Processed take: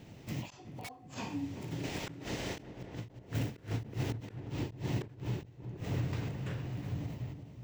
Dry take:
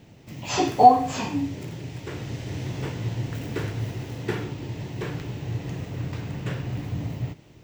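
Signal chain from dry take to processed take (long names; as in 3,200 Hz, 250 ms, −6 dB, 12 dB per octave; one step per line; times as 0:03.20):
0:01.83–0:02.61: ceiling on every frequency bin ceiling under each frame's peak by 17 dB
in parallel at +1 dB: downward compressor 6 to 1, threshold −36 dBFS, peak gain reduction 26 dB
on the sum: wrap-around overflow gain 6 dB
sample-and-hold tremolo, depth 80%
gate with flip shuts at −21 dBFS, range −28 dB
on a send: feedback echo with a low-pass in the loop 372 ms, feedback 50%, low-pass 950 Hz, level −9.5 dB
on the sum: every ending faded ahead of time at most 170 dB per second
level −1.5 dB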